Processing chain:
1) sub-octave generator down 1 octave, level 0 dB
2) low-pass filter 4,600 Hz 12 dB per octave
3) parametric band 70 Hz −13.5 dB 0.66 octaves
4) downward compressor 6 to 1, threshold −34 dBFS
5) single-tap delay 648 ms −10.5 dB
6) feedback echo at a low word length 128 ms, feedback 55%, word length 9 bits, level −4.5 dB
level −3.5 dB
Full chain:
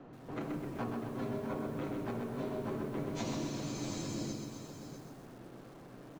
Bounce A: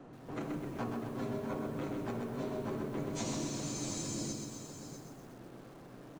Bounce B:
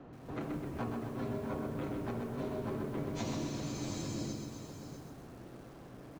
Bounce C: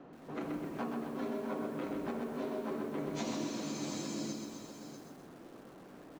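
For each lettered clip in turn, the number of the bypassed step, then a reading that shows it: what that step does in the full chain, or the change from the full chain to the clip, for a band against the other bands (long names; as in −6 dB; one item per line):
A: 2, 8 kHz band +7.0 dB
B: 3, 125 Hz band +2.0 dB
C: 1, 125 Hz band −7.5 dB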